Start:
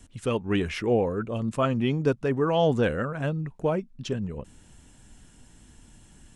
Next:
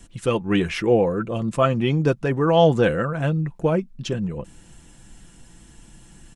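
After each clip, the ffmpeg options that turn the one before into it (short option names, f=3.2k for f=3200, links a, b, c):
-af "aecho=1:1:5.9:0.41,volume=4.5dB"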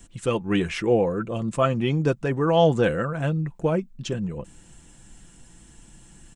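-af "aexciter=amount=1.4:drive=2.8:freq=6.9k,volume=-2.5dB"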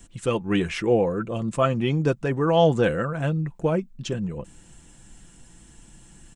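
-af anull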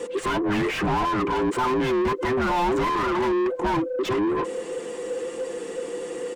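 -filter_complex "[0:a]afftfilt=real='real(if(between(b,1,1008),(2*floor((b-1)/24)+1)*24-b,b),0)':imag='imag(if(between(b,1,1008),(2*floor((b-1)/24)+1)*24-b,b),0)*if(between(b,1,1008),-1,1)':win_size=2048:overlap=0.75,asplit=2[a][b];[b]highpass=f=720:p=1,volume=38dB,asoftclip=type=tanh:threshold=-7.5dB[c];[a][c]amix=inputs=2:normalize=0,lowpass=f=1.2k:p=1,volume=-6dB,volume=-7.5dB"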